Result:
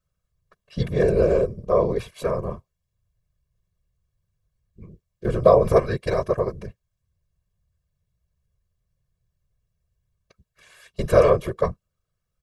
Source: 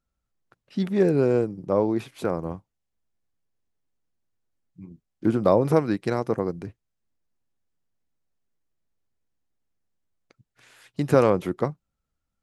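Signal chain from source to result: whisperiser; comb 1.8 ms, depth 85%

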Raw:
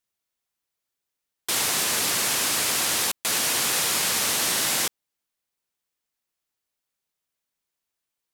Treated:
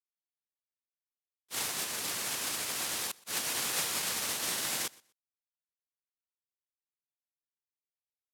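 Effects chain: gate -21 dBFS, range -50 dB; on a send: feedback echo 0.123 s, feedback 20%, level -24 dB; on the sum: gain +3.5 dB

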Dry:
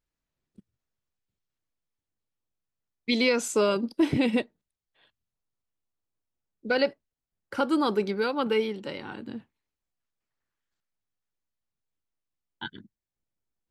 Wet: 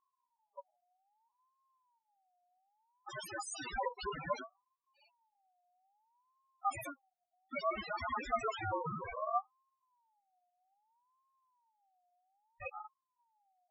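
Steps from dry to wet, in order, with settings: wrapped overs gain 28.5 dB; loudest bins only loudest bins 2; ring modulator with a swept carrier 890 Hz, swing 20%, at 0.62 Hz; gain +9.5 dB

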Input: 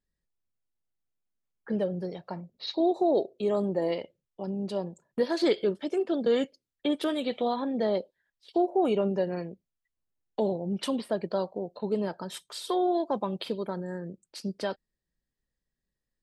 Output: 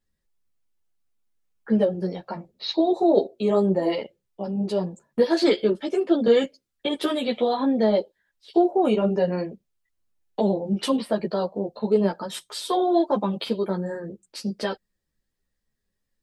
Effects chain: ensemble effect; gain +9 dB

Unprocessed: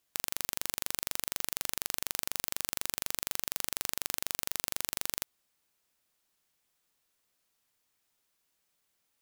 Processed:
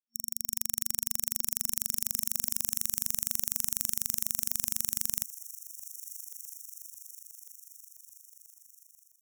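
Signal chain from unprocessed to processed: per-bin expansion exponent 3; thin delay 0.328 s, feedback 82%, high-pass 2800 Hz, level -18.5 dB; AGC gain up to 10.5 dB; FFT band-reject 230–5500 Hz; in parallel at -2 dB: overloaded stage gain 10.5 dB; on the sum: gain -1 dB

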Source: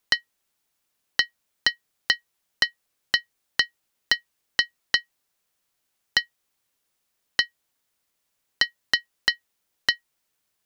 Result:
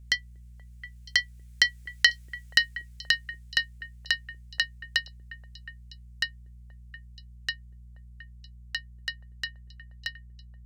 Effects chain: Doppler pass-by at 2.14, 11 m/s, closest 6.3 m; in parallel at -2 dB: negative-ratio compressor -32 dBFS; on the sum: buzz 60 Hz, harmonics 4, -46 dBFS -8 dB/oct; graphic EQ 250/1000/2000/8000 Hz -12/-10/+6/+7 dB; on a send: delay with a stepping band-pass 0.239 s, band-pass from 250 Hz, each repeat 1.4 oct, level -9.5 dB; on the sum: gain -1 dB

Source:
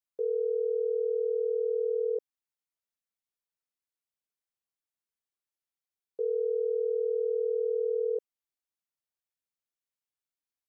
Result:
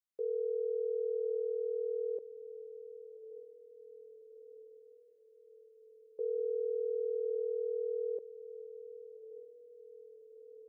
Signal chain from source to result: 6.36–7.39 notches 60/120/180/240/300/360/420 Hz; diffused feedback echo 1.167 s, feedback 55%, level -13 dB; gain -5.5 dB

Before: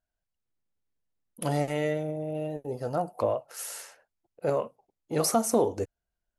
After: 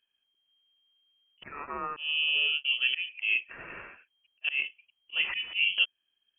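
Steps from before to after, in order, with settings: 1.43–1.97 HPF 1400 Hz 24 dB/oct; auto swell 0.207 s; inverted band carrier 3200 Hz; gain +5.5 dB

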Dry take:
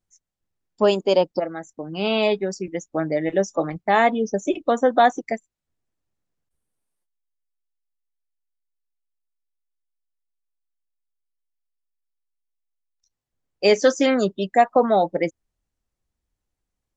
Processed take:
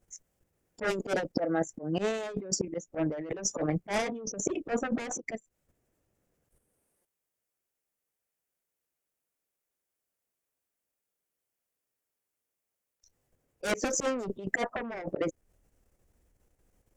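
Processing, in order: added harmonics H 3 -10 dB, 6 -26 dB, 7 -6 dB, 8 -30 dB, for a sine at -4 dBFS; level quantiser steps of 9 dB; graphic EQ 500/1000/4000 Hz +6/-4/-9 dB; auto swell 0.354 s; negative-ratio compressor -30 dBFS, ratio -1; gain -2.5 dB

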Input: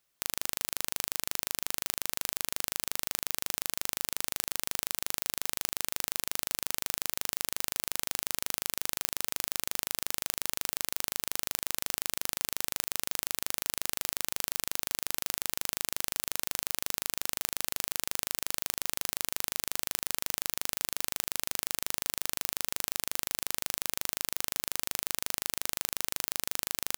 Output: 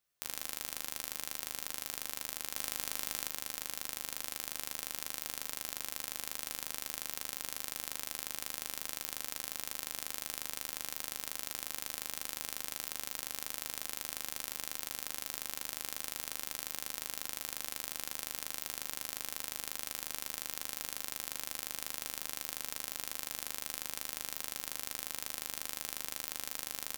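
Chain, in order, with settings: resonator 70 Hz, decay 0.31 s, harmonics all, mix 80%; 2.55–3.28 fast leveller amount 100%

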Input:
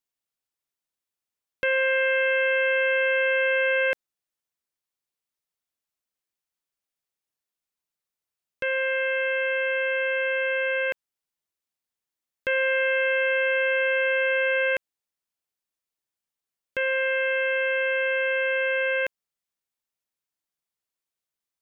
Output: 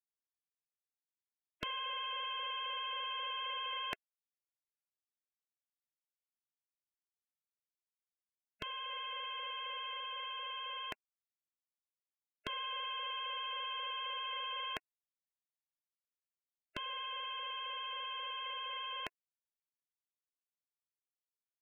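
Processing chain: vibrato 15 Hz 21 cents; spectral gate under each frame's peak -15 dB weak; 8.91–9.92 small resonant body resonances 240/1900 Hz, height 17 dB, ringing for 45 ms; gain -1 dB

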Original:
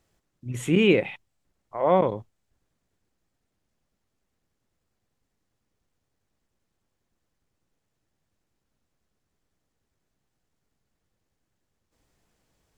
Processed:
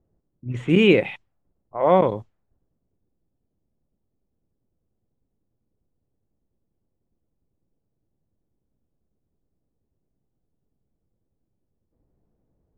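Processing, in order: low-pass opened by the level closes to 480 Hz, open at -22.5 dBFS; gain +3.5 dB

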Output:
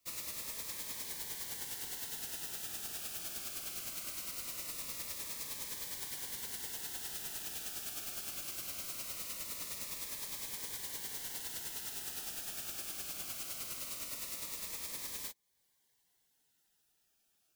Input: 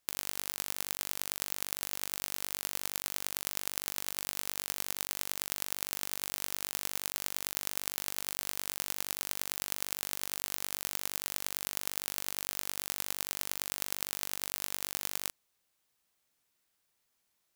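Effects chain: phase scrambler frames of 50 ms; compressor 1.5:1, threshold -54 dBFS, peak gain reduction 7.5 dB; cascading phaser falling 0.21 Hz; gain +2.5 dB

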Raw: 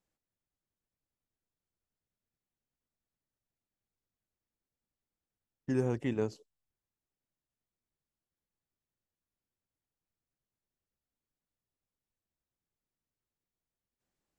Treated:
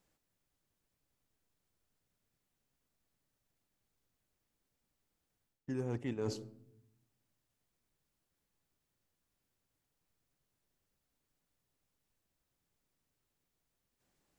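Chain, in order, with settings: shoebox room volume 1900 m³, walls furnished, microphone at 0.31 m; reverse; compressor 16:1, threshold -41 dBFS, peak gain reduction 17 dB; reverse; overloaded stage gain 36 dB; gain +8 dB

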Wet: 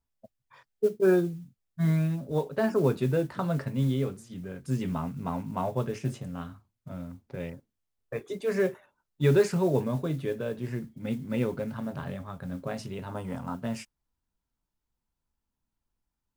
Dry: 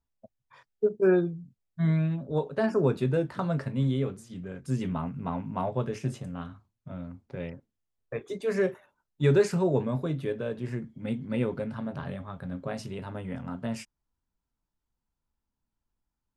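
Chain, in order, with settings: 13.09–13.55 graphic EQ 1000/2000/8000 Hz +9/-5/+11 dB; modulation noise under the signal 29 dB

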